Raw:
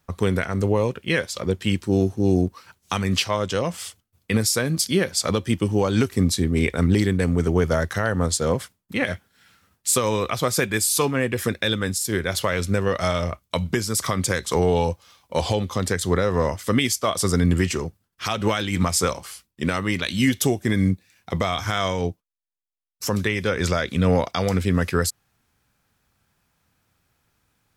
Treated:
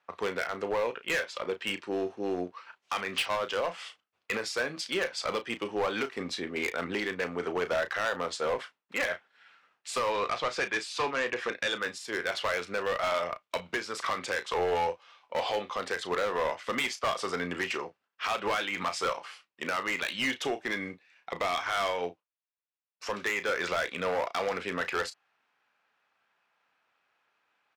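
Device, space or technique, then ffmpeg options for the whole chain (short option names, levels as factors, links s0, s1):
megaphone: -filter_complex "[0:a]highpass=640,lowpass=2700,equalizer=f=2700:t=o:w=0.22:g=4,asoftclip=type=hard:threshold=0.0596,asplit=2[s0][s1];[s1]adelay=34,volume=0.282[s2];[s0][s2]amix=inputs=2:normalize=0,asettb=1/sr,asplit=3[s3][s4][s5];[s3]atrim=end=10.124[s6];[s4]atrim=start=10.12:end=11.82,asetpts=PTS-STARTPTS,afade=t=in:d=0.004:c=qsin,afade=t=out:st=1.696:d=0.004:c=qsin,lowpass=7200[s7];[s5]atrim=start=11.816[s8];[s6][s7]acrossfade=d=0.004:c1=hsin:c2=qsin[s9];[s9][s8]acrossfade=d=0.004:c1=qsin:c2=hsin"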